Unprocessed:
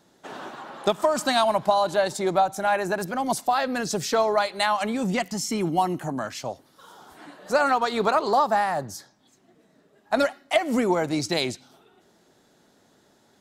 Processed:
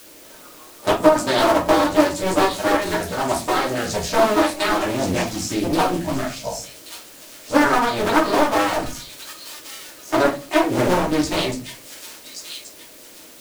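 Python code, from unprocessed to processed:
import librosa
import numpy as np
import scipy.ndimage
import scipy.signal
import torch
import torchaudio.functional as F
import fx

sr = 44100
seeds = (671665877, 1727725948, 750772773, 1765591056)

p1 = fx.cycle_switch(x, sr, every=2, mode='muted')
p2 = fx.dmg_noise_band(p1, sr, seeds[0], low_hz=200.0, high_hz=630.0, level_db=-42.0)
p3 = fx.noise_reduce_blind(p2, sr, reduce_db=17)
p4 = p3 + fx.echo_wet_highpass(p3, sr, ms=1129, feedback_pct=33, hz=4000.0, wet_db=-3.5, dry=0)
p5 = fx.room_shoebox(p4, sr, seeds[1], volume_m3=140.0, walls='furnished', distance_m=2.7)
p6 = fx.quant_dither(p5, sr, seeds[2], bits=6, dither='triangular')
p7 = p5 + F.gain(torch.from_numpy(p6), -4.5).numpy()
p8 = fx.doppler_dist(p7, sr, depth_ms=0.34)
y = F.gain(torch.from_numpy(p8), -4.0).numpy()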